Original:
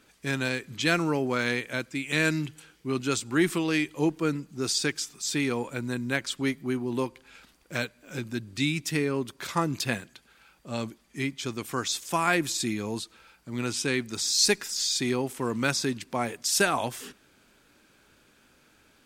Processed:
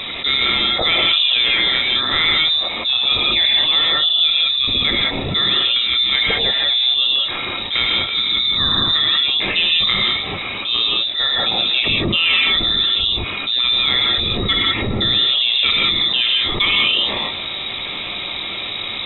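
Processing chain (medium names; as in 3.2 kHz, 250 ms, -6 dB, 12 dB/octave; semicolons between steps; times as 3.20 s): bass shelf 62 Hz +10 dB; band-stop 2.3 kHz, Q 5.6; gated-style reverb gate 210 ms rising, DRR -2.5 dB; frequency inversion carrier 3.8 kHz; level flattener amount 70%; trim +1 dB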